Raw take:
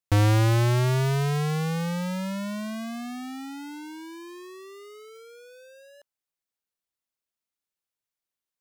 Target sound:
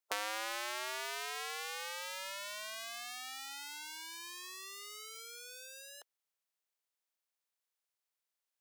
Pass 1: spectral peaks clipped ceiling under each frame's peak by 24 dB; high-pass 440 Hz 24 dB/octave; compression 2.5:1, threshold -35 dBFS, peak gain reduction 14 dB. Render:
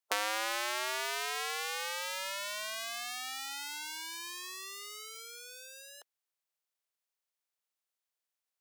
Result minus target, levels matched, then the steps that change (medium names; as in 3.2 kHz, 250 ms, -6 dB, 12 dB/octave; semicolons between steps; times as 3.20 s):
compression: peak gain reduction -5 dB
change: compression 2.5:1, threshold -43.5 dBFS, peak gain reduction 19.5 dB